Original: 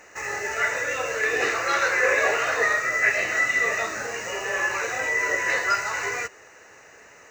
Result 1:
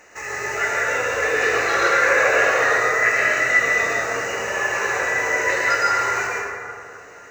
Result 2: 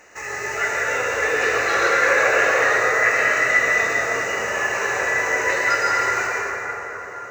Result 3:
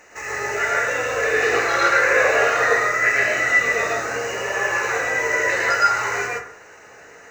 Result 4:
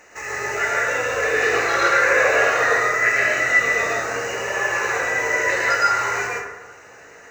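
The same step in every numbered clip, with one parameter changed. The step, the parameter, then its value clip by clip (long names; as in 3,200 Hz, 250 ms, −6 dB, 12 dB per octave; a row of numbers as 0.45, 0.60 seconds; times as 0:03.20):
dense smooth reverb, RT60: 2.4, 4.9, 0.55, 1.1 seconds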